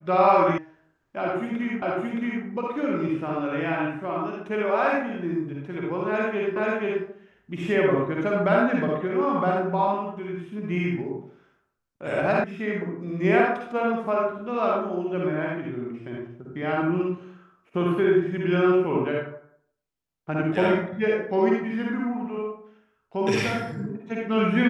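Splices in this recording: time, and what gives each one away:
0.58 s: sound stops dead
1.82 s: repeat of the last 0.62 s
6.56 s: repeat of the last 0.48 s
12.44 s: sound stops dead

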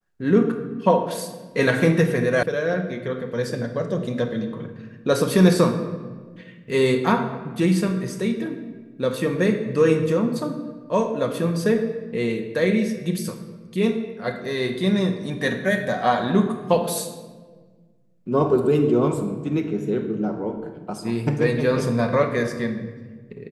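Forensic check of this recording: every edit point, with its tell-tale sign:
2.43 s: sound stops dead

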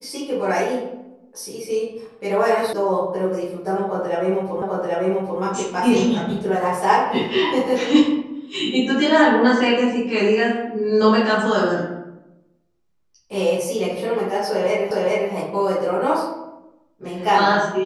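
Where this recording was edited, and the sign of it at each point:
2.73 s: sound stops dead
4.62 s: repeat of the last 0.79 s
14.91 s: repeat of the last 0.41 s

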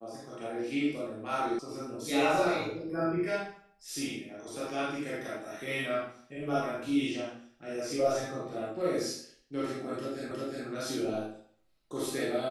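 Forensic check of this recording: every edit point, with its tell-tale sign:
1.59 s: sound stops dead
10.31 s: repeat of the last 0.36 s

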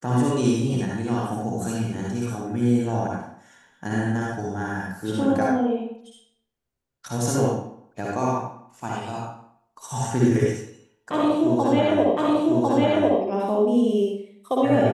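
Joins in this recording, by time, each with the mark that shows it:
12.17 s: repeat of the last 1.05 s

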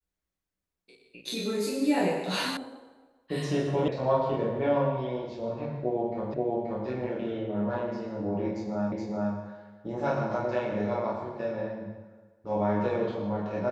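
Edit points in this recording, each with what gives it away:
2.57 s: sound stops dead
3.88 s: sound stops dead
6.34 s: repeat of the last 0.53 s
8.92 s: repeat of the last 0.42 s

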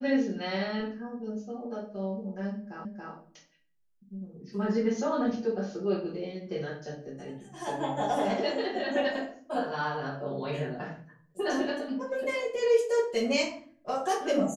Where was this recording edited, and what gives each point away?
2.85 s: repeat of the last 0.28 s

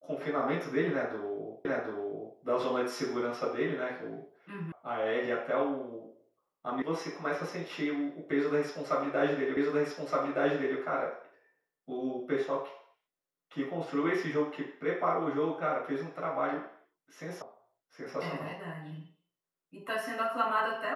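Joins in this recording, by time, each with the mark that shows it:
1.65 s: repeat of the last 0.74 s
4.72 s: sound stops dead
6.82 s: sound stops dead
9.57 s: repeat of the last 1.22 s
17.42 s: sound stops dead

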